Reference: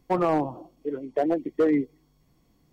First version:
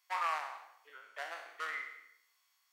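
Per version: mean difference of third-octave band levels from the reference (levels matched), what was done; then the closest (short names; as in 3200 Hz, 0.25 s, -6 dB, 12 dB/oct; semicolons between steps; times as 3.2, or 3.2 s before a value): 17.5 dB: spectral trails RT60 0.72 s; HPF 1200 Hz 24 dB/oct; non-linear reverb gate 0.32 s falling, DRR 10.5 dB; gain -1.5 dB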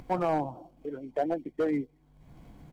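1.5 dB: median filter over 9 samples; comb 1.3 ms, depth 34%; upward compressor, threshold -30 dBFS; gain -4.5 dB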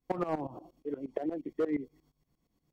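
3.0 dB: gate -58 dBFS, range -8 dB; compressor 2.5:1, threshold -28 dBFS, peak gain reduction 7 dB; tremolo saw up 8.5 Hz, depth 90%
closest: second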